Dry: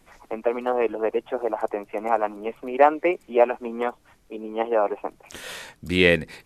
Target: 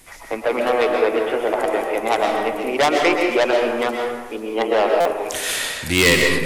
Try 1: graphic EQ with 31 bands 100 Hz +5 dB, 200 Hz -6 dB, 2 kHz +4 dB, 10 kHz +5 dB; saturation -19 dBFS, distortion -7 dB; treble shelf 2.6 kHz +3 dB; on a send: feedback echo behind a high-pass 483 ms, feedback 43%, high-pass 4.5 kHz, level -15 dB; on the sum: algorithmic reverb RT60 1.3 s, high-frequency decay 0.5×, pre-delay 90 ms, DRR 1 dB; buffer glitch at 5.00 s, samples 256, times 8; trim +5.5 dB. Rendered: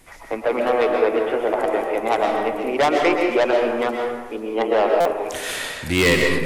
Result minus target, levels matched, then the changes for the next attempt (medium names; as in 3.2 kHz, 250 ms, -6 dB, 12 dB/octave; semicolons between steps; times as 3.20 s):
4 kHz band -3.5 dB
change: treble shelf 2.6 kHz +10.5 dB